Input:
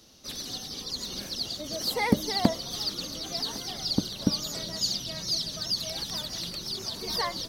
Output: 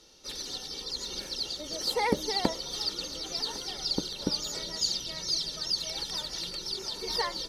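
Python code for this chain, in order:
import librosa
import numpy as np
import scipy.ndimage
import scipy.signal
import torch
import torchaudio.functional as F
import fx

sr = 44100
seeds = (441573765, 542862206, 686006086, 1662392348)

y = scipy.signal.sosfilt(scipy.signal.butter(2, 10000.0, 'lowpass', fs=sr, output='sos'), x)
y = fx.peak_eq(y, sr, hz=100.0, db=-15.0, octaves=0.65)
y = y + 0.5 * np.pad(y, (int(2.2 * sr / 1000.0), 0))[:len(y)]
y = F.gain(torch.from_numpy(y), -1.5).numpy()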